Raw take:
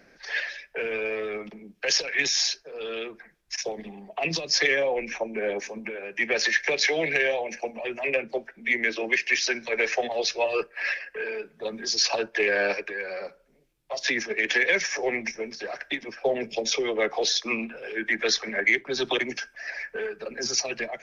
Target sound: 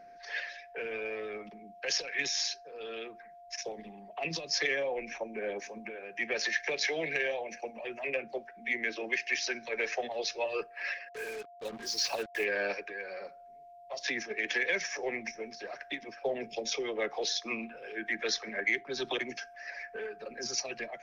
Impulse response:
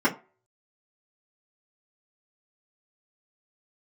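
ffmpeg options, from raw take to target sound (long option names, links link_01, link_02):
-filter_complex "[0:a]asplit=3[link_01][link_02][link_03];[link_01]afade=type=out:start_time=11.08:duration=0.02[link_04];[link_02]acrusher=bits=5:mix=0:aa=0.5,afade=type=in:start_time=11.08:duration=0.02,afade=type=out:start_time=12.43:duration=0.02[link_05];[link_03]afade=type=in:start_time=12.43:duration=0.02[link_06];[link_04][link_05][link_06]amix=inputs=3:normalize=0,aeval=exprs='val(0)+0.00794*sin(2*PI*700*n/s)':channel_layout=same,volume=-8dB"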